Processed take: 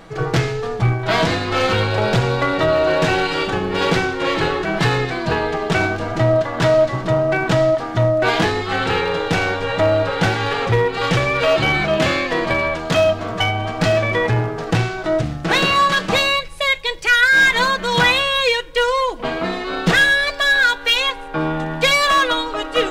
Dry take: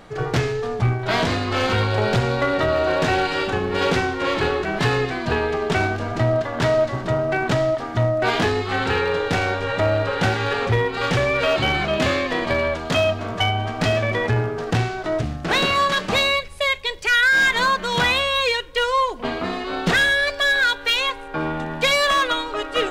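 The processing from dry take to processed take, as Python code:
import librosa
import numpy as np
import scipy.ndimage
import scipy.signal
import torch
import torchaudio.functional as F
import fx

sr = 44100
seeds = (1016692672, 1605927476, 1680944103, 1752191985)

y = x + 0.41 * np.pad(x, (int(6.1 * sr / 1000.0), 0))[:len(x)]
y = F.gain(torch.from_numpy(y), 2.5).numpy()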